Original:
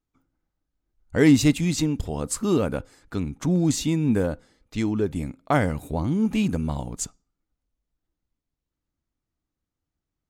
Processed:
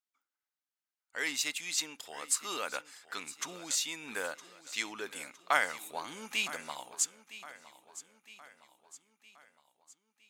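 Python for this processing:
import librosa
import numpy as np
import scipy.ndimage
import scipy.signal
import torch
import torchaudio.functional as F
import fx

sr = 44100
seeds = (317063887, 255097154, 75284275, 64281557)

p1 = scipy.signal.sosfilt(scipy.signal.butter(2, 1400.0, 'highpass', fs=sr, output='sos'), x)
p2 = fx.rider(p1, sr, range_db=4, speed_s=0.5)
y = p2 + fx.echo_feedback(p2, sr, ms=962, feedback_pct=50, wet_db=-16.0, dry=0)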